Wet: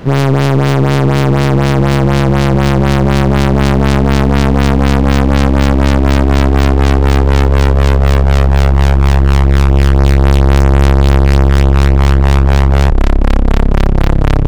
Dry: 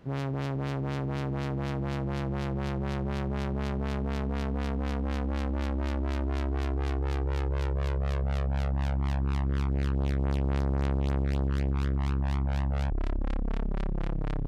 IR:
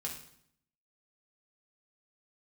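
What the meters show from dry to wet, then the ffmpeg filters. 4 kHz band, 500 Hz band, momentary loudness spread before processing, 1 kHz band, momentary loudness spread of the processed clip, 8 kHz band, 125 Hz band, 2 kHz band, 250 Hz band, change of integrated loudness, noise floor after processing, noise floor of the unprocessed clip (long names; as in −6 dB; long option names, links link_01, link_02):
+23.0 dB, +21.0 dB, 3 LU, +21.5 dB, 2 LU, can't be measured, +20.5 dB, +22.0 dB, +20.5 dB, +20.5 dB, −10 dBFS, −31 dBFS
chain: -af "aeval=exprs='clip(val(0),-1,0.00944)':channel_layout=same,apsyclip=26dB,aeval=exprs='1.06*(cos(1*acos(clip(val(0)/1.06,-1,1)))-cos(1*PI/2))+0.0944*(cos(6*acos(clip(val(0)/1.06,-1,1)))-cos(6*PI/2))':channel_layout=same,volume=-1dB"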